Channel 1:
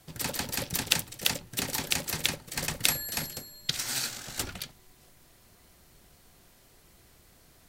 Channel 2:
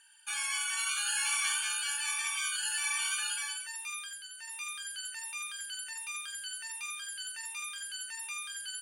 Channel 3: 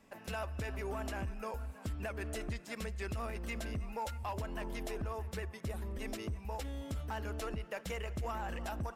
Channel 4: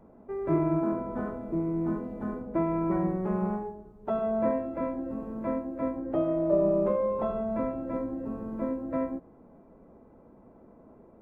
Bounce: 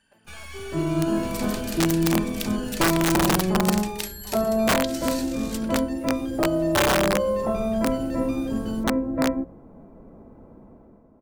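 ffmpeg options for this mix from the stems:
-filter_complex "[0:a]tiltshelf=f=720:g=-9.5,acompressor=threshold=-46dB:ratio=1.5,adelay=1150,volume=-4dB[a];[1:a]aemphasis=mode=reproduction:type=50fm,aeval=exprs='(tanh(100*val(0)+0.75)-tanh(0.75))/100':c=same,volume=1dB[b];[2:a]volume=-11.5dB[c];[3:a]dynaudnorm=f=110:g=13:m=13dB,adelay=250,volume=-8dB[d];[a][b][c][d]amix=inputs=4:normalize=0,lowshelf=f=240:g=8,bandreject=f=60:t=h:w=6,bandreject=f=120:t=h:w=6,bandreject=f=180:t=h:w=6,bandreject=f=240:t=h:w=6,bandreject=f=300:t=h:w=6,bandreject=f=360:t=h:w=6,bandreject=f=420:t=h:w=6,bandreject=f=480:t=h:w=6,bandreject=f=540:t=h:w=6,aeval=exprs='(mod(4.73*val(0)+1,2)-1)/4.73':c=same"

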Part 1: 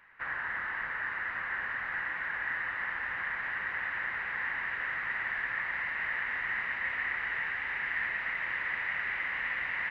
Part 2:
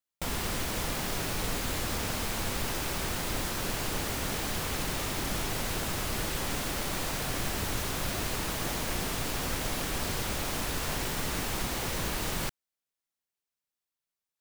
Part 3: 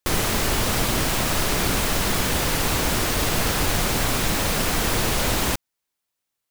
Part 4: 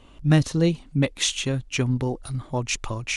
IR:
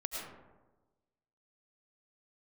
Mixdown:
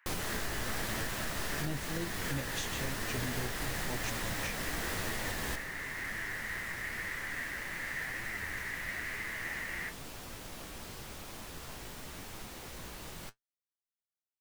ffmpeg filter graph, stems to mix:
-filter_complex "[0:a]highpass=1.1k,volume=-1.5dB[a];[1:a]adelay=800,volume=-9dB[b];[2:a]volume=-11dB,asplit=2[c][d];[d]volume=-7.5dB[e];[3:a]adelay=1350,volume=-8dB[f];[4:a]atrim=start_sample=2205[g];[e][g]afir=irnorm=-1:irlink=0[h];[a][b][c][f][h]amix=inputs=5:normalize=0,flanger=delay=8.9:depth=8.9:regen=55:speed=0.97:shape=sinusoidal,alimiter=level_in=0.5dB:limit=-24dB:level=0:latency=1:release=434,volume=-0.5dB"

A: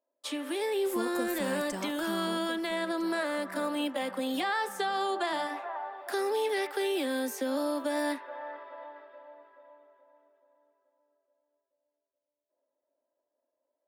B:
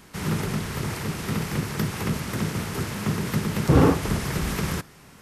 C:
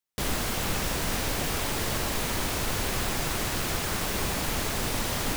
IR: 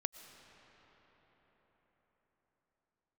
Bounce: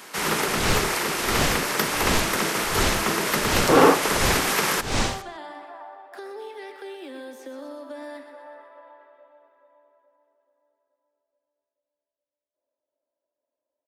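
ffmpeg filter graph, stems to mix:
-filter_complex "[0:a]lowpass=f=3.6k:p=1,acompressor=threshold=-34dB:ratio=2,adelay=50,volume=-11dB,asplit=2[a][b];[b]volume=-9dB[c];[1:a]highpass=470,volume=2.5dB[d];[2:a]lowpass=f=7.9k:w=0.5412,lowpass=f=7.9k:w=1.3066,aeval=exprs='0.0944*(abs(mod(val(0)/0.0944+3,4)-2)-1)':c=same,aeval=exprs='val(0)*pow(10,-32*(0.5-0.5*cos(2*PI*1.4*n/s))/20)':c=same,volume=1dB[e];[c]aecho=0:1:124|248|372|496|620|744|868|992:1|0.55|0.303|0.166|0.0915|0.0503|0.0277|0.0152[f];[a][d][e][f]amix=inputs=4:normalize=0,acontrast=83"

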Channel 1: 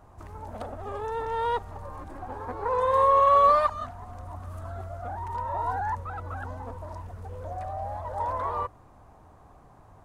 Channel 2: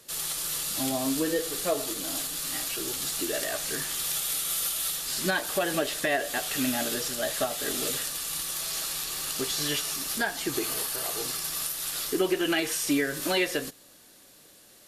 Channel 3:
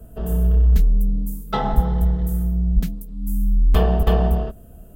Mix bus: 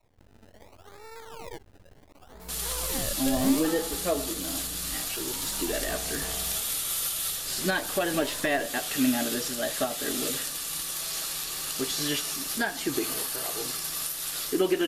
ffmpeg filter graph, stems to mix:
-filter_complex "[0:a]acrusher=samples=27:mix=1:aa=0.000001:lfo=1:lforange=27:lforate=0.7,aeval=exprs='max(val(0),0)':c=same,volume=-11dB[a];[1:a]adelay=2400,volume=-0.5dB[b];[2:a]lowshelf=f=380:g=-11,adelay=2150,volume=-16dB[c];[a][b][c]amix=inputs=3:normalize=0,adynamicequalizer=threshold=0.00708:dfrequency=260:dqfactor=2.2:tfrequency=260:tqfactor=2.2:attack=5:release=100:ratio=0.375:range=3:mode=boostabove:tftype=bell"

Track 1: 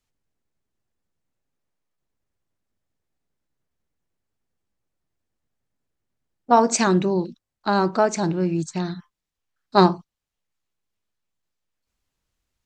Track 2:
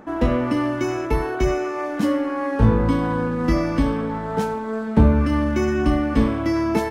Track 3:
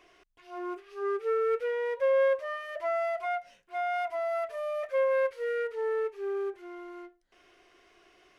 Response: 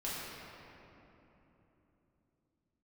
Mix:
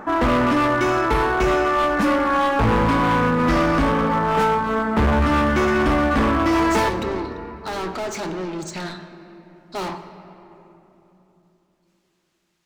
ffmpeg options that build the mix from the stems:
-filter_complex "[0:a]asplit=2[a][b];[b]highpass=f=720:p=1,volume=36dB,asoftclip=type=tanh:threshold=-3.5dB[c];[a][c]amix=inputs=2:normalize=0,lowpass=f=5.2k:p=1,volume=-6dB,volume=-19dB,asplit=2[d][e];[e]volume=-11dB[f];[1:a]equalizer=f=1.2k:w=0.81:g=10.5,volume=1dB,asplit=2[g][h];[h]volume=-13.5dB[i];[2:a]adelay=1850,volume=-10dB[j];[3:a]atrim=start_sample=2205[k];[f][i]amix=inputs=2:normalize=0[l];[l][k]afir=irnorm=-1:irlink=0[m];[d][g][j][m]amix=inputs=4:normalize=0,asoftclip=type=hard:threshold=-15dB"

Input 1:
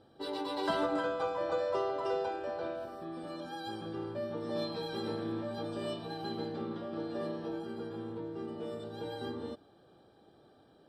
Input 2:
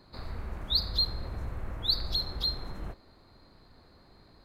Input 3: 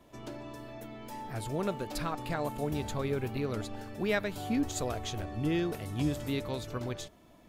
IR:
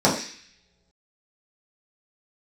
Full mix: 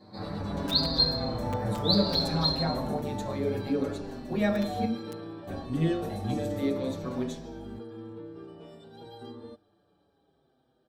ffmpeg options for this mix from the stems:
-filter_complex "[0:a]lowshelf=f=110:g=4.5,dynaudnorm=f=300:g=13:m=4dB,aeval=exprs='(mod(10.6*val(0)+1,2)-1)/10.6':c=same,volume=-5dB[a];[1:a]volume=-7.5dB,asplit=2[b][c];[c]volume=-4.5dB[d];[2:a]aeval=exprs='val(0)+0.00708*(sin(2*PI*50*n/s)+sin(2*PI*2*50*n/s)/2+sin(2*PI*3*50*n/s)/3+sin(2*PI*4*50*n/s)/4+sin(2*PI*5*50*n/s)/5)':c=same,adelay=300,volume=-3dB,asplit=3[e][f][g];[e]atrim=end=4.85,asetpts=PTS-STARTPTS,afade=t=out:st=4.846:d=0.004:c=hsin[h];[f]atrim=start=4.85:end=5.47,asetpts=PTS-STARTPTS,volume=0[i];[g]atrim=start=5.47,asetpts=PTS-STARTPTS,afade=t=in:d=0.004:c=hsin[j];[h][i][j]concat=n=3:v=0:a=1,asplit=2[k][l];[l]volume=-15.5dB[m];[3:a]atrim=start_sample=2205[n];[d][m]amix=inputs=2:normalize=0[o];[o][n]afir=irnorm=-1:irlink=0[p];[a][b][k][p]amix=inputs=4:normalize=0,asplit=2[q][r];[r]adelay=6.2,afreqshift=-0.63[s];[q][s]amix=inputs=2:normalize=1"

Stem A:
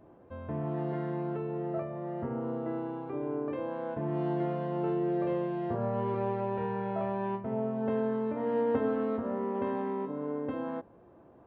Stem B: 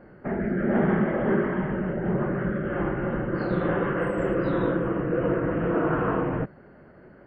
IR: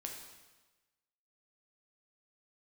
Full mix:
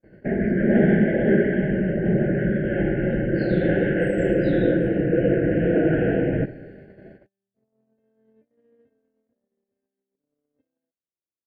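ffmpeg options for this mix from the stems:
-filter_complex "[0:a]alimiter=level_in=5dB:limit=-24dB:level=0:latency=1:release=27,volume=-5dB,adelay=100,volume=-10.5dB[a];[1:a]volume=2.5dB,asplit=2[b][c];[c]volume=-4.5dB[d];[2:a]atrim=start_sample=2205[e];[d][e]afir=irnorm=-1:irlink=0[f];[a][b][f]amix=inputs=3:normalize=0,asuperstop=centerf=1100:order=12:qfactor=1.6,equalizer=f=760:t=o:w=0.22:g=-11,agate=range=-38dB:threshold=-43dB:ratio=16:detection=peak"

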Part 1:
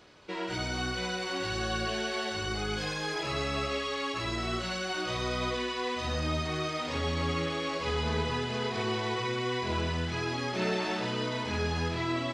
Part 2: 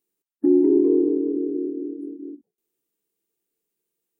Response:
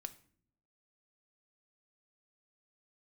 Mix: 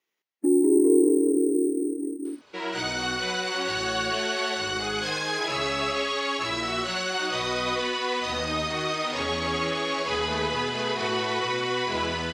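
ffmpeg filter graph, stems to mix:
-filter_complex "[0:a]dynaudnorm=f=120:g=5:m=7.5dB,adelay=2250,volume=-9.5dB[a];[1:a]acrusher=samples=5:mix=1:aa=0.000001,volume=-1.5dB[b];[a][b]amix=inputs=2:normalize=0,highpass=f=350:p=1,dynaudnorm=f=180:g=11:m=8.5dB"

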